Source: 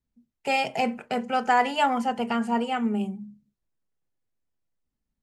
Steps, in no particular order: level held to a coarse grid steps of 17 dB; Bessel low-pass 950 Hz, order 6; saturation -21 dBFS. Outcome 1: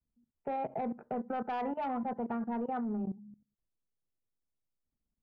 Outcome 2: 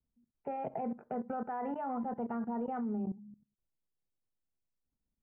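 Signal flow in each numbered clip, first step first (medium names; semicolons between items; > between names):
Bessel low-pass > saturation > level held to a coarse grid; level held to a coarse grid > Bessel low-pass > saturation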